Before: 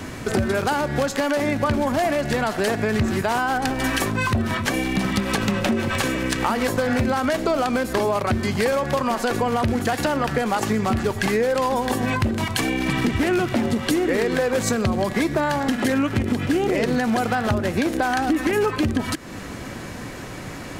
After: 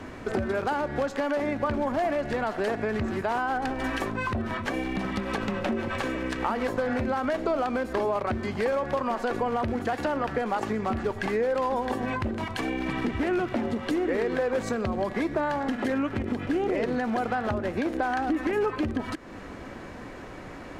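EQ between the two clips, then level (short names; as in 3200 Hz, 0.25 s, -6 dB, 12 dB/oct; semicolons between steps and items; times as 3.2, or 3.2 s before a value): bell 130 Hz -8.5 dB 1.5 oct; high shelf 2700 Hz -11.5 dB; high shelf 8800 Hz -8.5 dB; -3.5 dB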